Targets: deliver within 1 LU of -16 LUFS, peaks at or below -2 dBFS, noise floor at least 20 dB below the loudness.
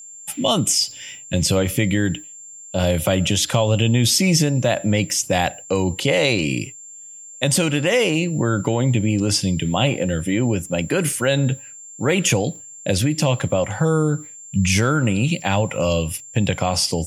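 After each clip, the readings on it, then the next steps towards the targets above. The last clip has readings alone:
steady tone 7300 Hz; tone level -37 dBFS; loudness -20.0 LUFS; peak -3.0 dBFS; loudness target -16.0 LUFS
-> notch 7300 Hz, Q 30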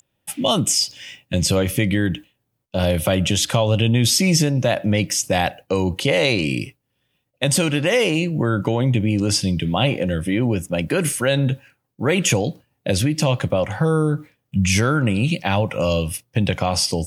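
steady tone none; loudness -20.0 LUFS; peak -3.0 dBFS; loudness target -16.0 LUFS
-> gain +4 dB; limiter -2 dBFS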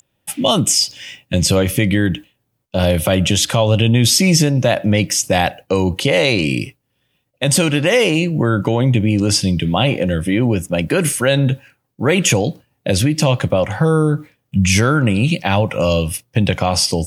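loudness -16.0 LUFS; peak -2.0 dBFS; noise floor -69 dBFS

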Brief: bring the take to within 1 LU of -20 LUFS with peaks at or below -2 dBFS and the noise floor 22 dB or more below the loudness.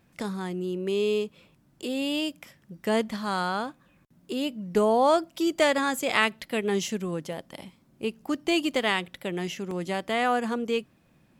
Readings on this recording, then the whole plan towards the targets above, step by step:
dropouts 2; longest dropout 2.8 ms; loudness -27.5 LUFS; peak -7.0 dBFS; loudness target -20.0 LUFS
-> interpolate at 7.33/9.71, 2.8 ms; gain +7.5 dB; limiter -2 dBFS

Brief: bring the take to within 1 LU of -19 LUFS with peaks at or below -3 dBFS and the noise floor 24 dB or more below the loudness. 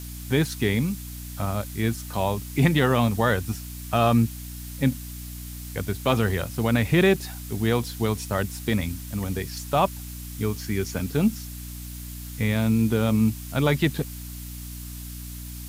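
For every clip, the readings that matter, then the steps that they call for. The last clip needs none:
hum 60 Hz; harmonics up to 300 Hz; hum level -36 dBFS; noise floor -37 dBFS; noise floor target -49 dBFS; loudness -25.0 LUFS; peak -7.5 dBFS; loudness target -19.0 LUFS
-> de-hum 60 Hz, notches 5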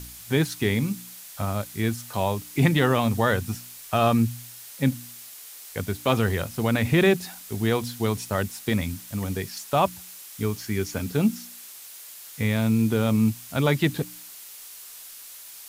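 hum none; noise floor -43 dBFS; noise floor target -49 dBFS
-> denoiser 6 dB, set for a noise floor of -43 dBFS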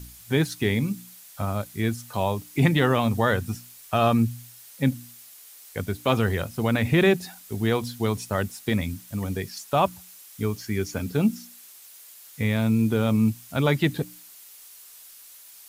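noise floor -48 dBFS; noise floor target -49 dBFS
-> denoiser 6 dB, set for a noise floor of -48 dBFS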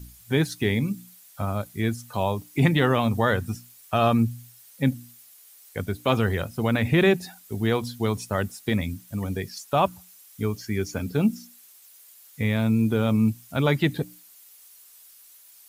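noise floor -52 dBFS; loudness -25.0 LUFS; peak -8.0 dBFS; loudness target -19.0 LUFS
-> gain +6 dB; limiter -3 dBFS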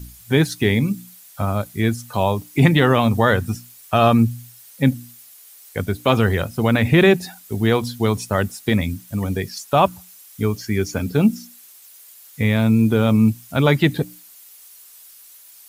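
loudness -19.0 LUFS; peak -3.0 dBFS; noise floor -46 dBFS

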